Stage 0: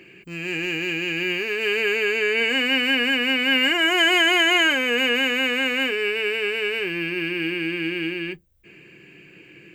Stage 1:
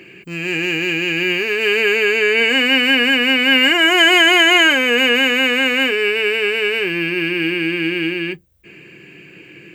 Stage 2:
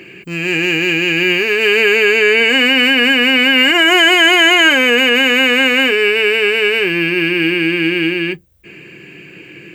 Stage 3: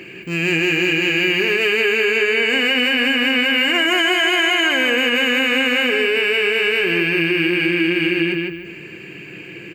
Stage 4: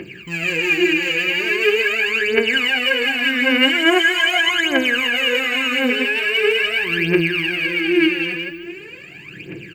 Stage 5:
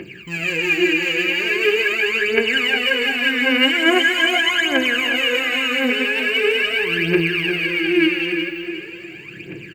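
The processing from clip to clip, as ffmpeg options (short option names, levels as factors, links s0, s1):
-af "highpass=49,volume=2.11"
-af "alimiter=level_in=1.88:limit=0.891:release=50:level=0:latency=1,volume=0.891"
-filter_complex "[0:a]asplit=2[s0][s1];[s1]adelay=155,lowpass=f=4900:p=1,volume=0.562,asplit=2[s2][s3];[s3]adelay=155,lowpass=f=4900:p=1,volume=0.35,asplit=2[s4][s5];[s5]adelay=155,lowpass=f=4900:p=1,volume=0.35,asplit=2[s6][s7];[s7]adelay=155,lowpass=f=4900:p=1,volume=0.35[s8];[s2][s4][s6][s8]amix=inputs=4:normalize=0[s9];[s0][s9]amix=inputs=2:normalize=0,acompressor=threshold=0.2:ratio=6"
-af "aphaser=in_gain=1:out_gain=1:delay=4.1:decay=0.76:speed=0.42:type=triangular,volume=0.596"
-af "aecho=1:1:357|714|1071|1428:0.316|0.123|0.0481|0.0188,volume=0.891"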